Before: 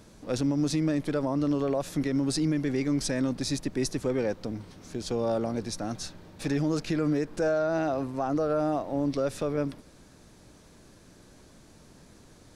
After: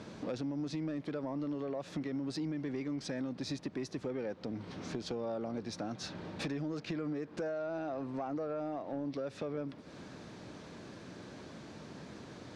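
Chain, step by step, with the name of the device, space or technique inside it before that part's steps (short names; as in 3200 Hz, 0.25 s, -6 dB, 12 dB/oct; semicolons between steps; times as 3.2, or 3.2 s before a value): AM radio (BPF 120–4100 Hz; compressor 6:1, threshold -42 dBFS, peak gain reduction 17.5 dB; soft clip -34.5 dBFS, distortion -22 dB); gain +7 dB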